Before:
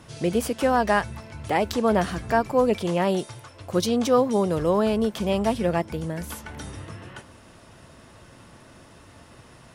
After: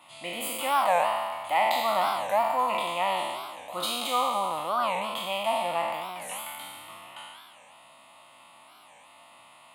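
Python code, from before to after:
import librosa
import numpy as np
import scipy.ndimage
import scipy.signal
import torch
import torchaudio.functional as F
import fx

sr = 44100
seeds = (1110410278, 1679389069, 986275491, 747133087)

y = fx.spec_trails(x, sr, decay_s=1.77)
y = scipy.signal.sosfilt(scipy.signal.butter(2, 590.0, 'highpass', fs=sr, output='sos'), y)
y = fx.fixed_phaser(y, sr, hz=1600.0, stages=6)
y = fx.record_warp(y, sr, rpm=45.0, depth_cents=250.0)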